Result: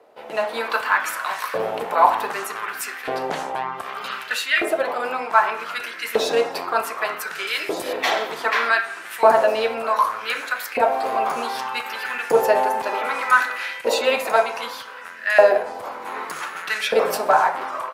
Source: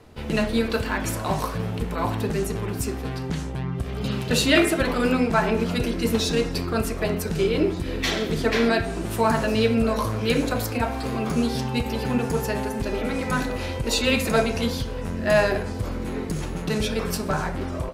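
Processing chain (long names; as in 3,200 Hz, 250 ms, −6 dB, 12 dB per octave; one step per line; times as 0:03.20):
automatic gain control gain up to 14 dB
parametric band 6,600 Hz −9 dB 2.6 octaves
auto-filter high-pass saw up 0.65 Hz 540–1,900 Hz
0:07.47–0:07.93: bass and treble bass −2 dB, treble +14 dB
level −2 dB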